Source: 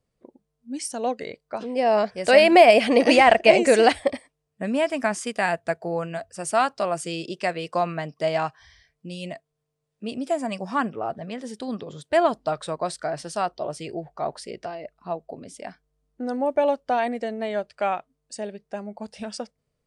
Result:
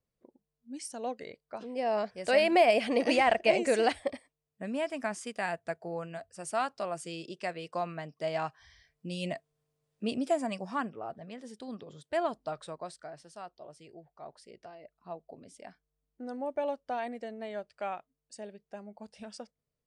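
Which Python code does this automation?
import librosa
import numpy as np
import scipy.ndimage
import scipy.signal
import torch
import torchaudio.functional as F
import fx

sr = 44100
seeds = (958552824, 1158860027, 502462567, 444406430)

y = fx.gain(x, sr, db=fx.line((8.19, -10.0), (9.3, -0.5), (10.05, -0.5), (10.98, -11.0), (12.6, -11.0), (13.28, -19.0), (14.16, -19.0), (15.21, -11.5)))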